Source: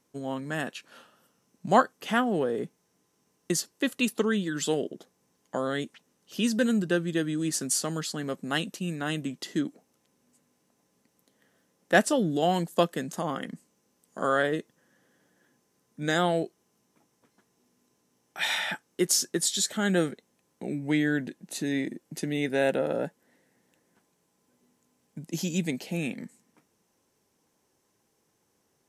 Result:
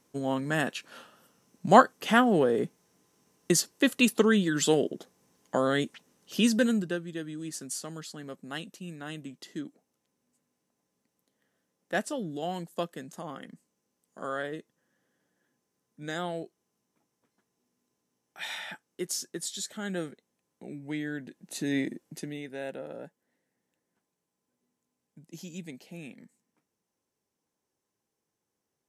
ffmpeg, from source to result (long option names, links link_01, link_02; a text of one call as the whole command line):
ffmpeg -i in.wav -af "volume=13dB,afade=type=out:start_time=6.36:duration=0.65:silence=0.237137,afade=type=in:start_time=21.24:duration=0.55:silence=0.334965,afade=type=out:start_time=21.79:duration=0.65:silence=0.223872" out.wav